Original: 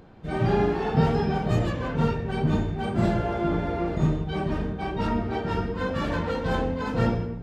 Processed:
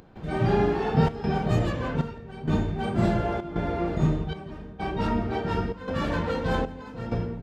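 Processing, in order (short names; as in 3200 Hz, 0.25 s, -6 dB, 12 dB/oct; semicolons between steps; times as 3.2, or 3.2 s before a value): upward compressor, threshold -31 dBFS; step gate ".xxxxxx.xxxxx.." 97 bpm -12 dB; echo 0.17 s -21 dB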